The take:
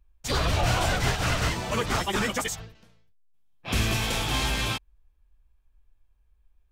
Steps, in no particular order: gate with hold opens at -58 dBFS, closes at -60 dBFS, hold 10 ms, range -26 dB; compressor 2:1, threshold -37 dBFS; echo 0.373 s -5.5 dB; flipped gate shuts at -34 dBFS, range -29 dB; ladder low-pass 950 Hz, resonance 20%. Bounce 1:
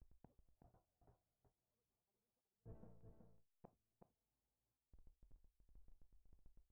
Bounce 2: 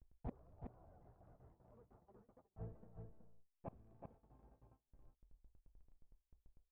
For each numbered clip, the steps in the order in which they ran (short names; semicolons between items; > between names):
compressor > flipped gate > ladder low-pass > gate with hold > echo; ladder low-pass > compressor > flipped gate > echo > gate with hold